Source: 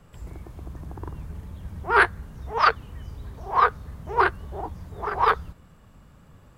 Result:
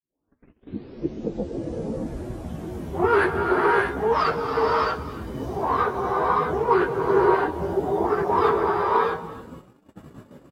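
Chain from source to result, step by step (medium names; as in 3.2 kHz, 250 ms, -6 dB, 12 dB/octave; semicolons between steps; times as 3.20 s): tape start-up on the opening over 1.70 s; bass shelf 95 Hz -11.5 dB; in parallel at -8 dB: saturation -13.5 dBFS, distortion -13 dB; on the sum: compression 2:1, threshold -31 dBFS, peak gain reduction 11.5 dB; feedback delay 172 ms, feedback 19%, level -17 dB; gated-style reverb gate 420 ms rising, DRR -1.5 dB; plain phase-vocoder stretch 1.6×; peaking EQ 320 Hz +14.5 dB 1.5 oct; gate -44 dBFS, range -25 dB; high-pass 48 Hz; trim +3.5 dB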